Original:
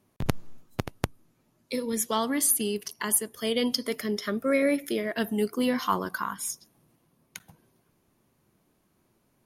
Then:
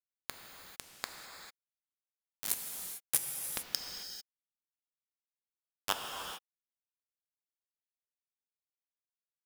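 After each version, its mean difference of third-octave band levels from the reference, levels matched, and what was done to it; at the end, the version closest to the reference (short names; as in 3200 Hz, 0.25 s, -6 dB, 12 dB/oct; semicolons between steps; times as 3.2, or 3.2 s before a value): 20.0 dB: steep high-pass 210 Hz 72 dB/oct; resonator 460 Hz, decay 0.17 s, harmonics all, mix 70%; bit-crush 4-bit; non-linear reverb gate 0.47 s flat, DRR 2.5 dB; gain +2.5 dB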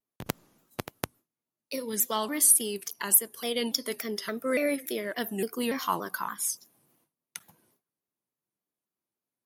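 4.0 dB: HPF 280 Hz 6 dB/oct; gate with hold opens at -58 dBFS; high shelf 10000 Hz +11 dB; shaped vibrato saw down 3.5 Hz, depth 160 cents; gain -2 dB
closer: second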